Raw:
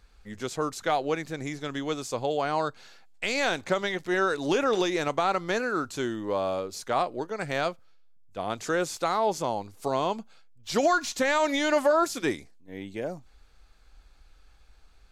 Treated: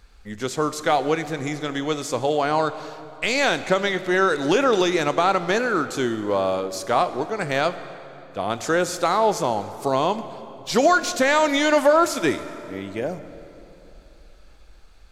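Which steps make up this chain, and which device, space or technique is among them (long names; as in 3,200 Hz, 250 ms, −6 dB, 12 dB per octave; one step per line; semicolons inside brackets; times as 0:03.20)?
saturated reverb return (on a send at −11 dB: convolution reverb RT60 3.0 s, pre-delay 26 ms + soft clipping −21 dBFS, distortion −15 dB)
on the sum: level +6 dB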